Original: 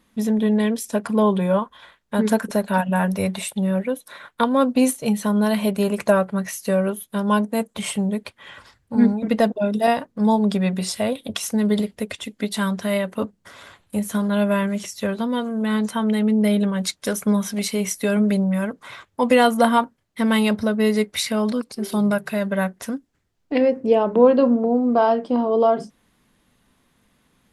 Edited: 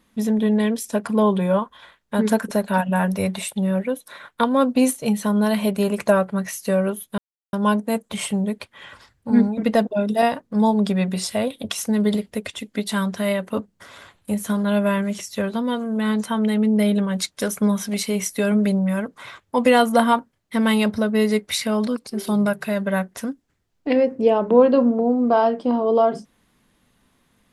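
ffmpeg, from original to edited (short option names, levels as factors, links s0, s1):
-filter_complex "[0:a]asplit=2[s0][s1];[s0]atrim=end=7.18,asetpts=PTS-STARTPTS,afade=t=out:st=7.176:d=0.004:c=hsin,apad=pad_dur=0.35[s2];[s1]atrim=start=7.18,asetpts=PTS-STARTPTS,afade=t=in:d=0.004:c=hsin[s3];[s2][s3]concat=n=2:v=0:a=1"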